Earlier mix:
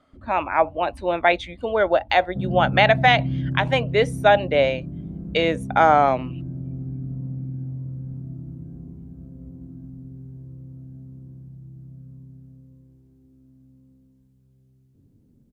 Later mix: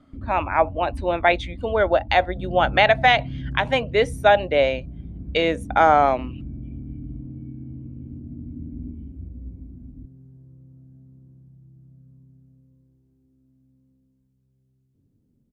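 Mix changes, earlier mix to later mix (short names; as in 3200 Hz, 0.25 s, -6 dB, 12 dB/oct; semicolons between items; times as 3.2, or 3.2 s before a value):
first sound +11.0 dB; second sound -8.0 dB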